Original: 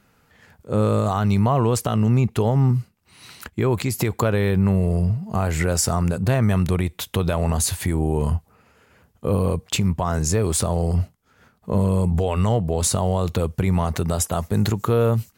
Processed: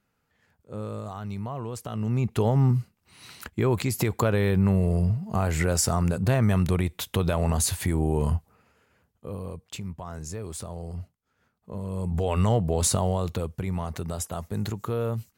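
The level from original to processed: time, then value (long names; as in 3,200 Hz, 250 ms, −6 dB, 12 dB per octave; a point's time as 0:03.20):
0:01.73 −15 dB
0:02.42 −3 dB
0:08.35 −3 dB
0:09.32 −15 dB
0:11.81 −15 dB
0:12.32 −2.5 dB
0:12.95 −2.5 dB
0:13.59 −9.5 dB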